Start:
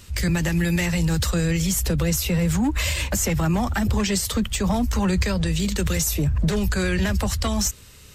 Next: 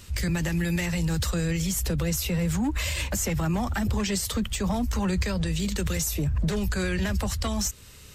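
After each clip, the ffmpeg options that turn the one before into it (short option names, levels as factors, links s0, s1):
-af "alimiter=limit=0.126:level=0:latency=1:release=201,volume=0.891"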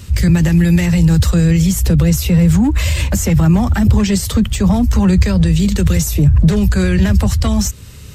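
-af "equalizer=f=110:w=0.45:g=10.5,volume=2.24"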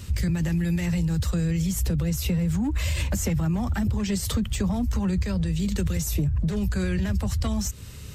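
-af "acompressor=threshold=0.141:ratio=6,volume=0.562"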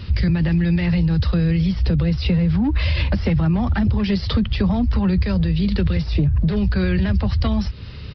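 -af "aresample=11025,aresample=44100,volume=2.11"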